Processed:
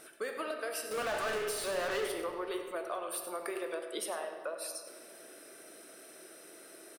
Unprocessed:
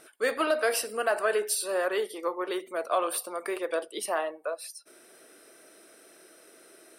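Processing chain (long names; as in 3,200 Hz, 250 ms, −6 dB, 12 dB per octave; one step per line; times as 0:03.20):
high-shelf EQ 10,000 Hz +4.5 dB
downward compressor 12 to 1, threshold −35 dBFS, peak gain reduction 14.5 dB
0:00.91–0:02.12: mid-hump overdrive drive 33 dB, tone 4,400 Hz, clips at −29.5 dBFS
single-tap delay 98 ms −12.5 dB
on a send at −6 dB: convolution reverb RT60 2.0 s, pre-delay 27 ms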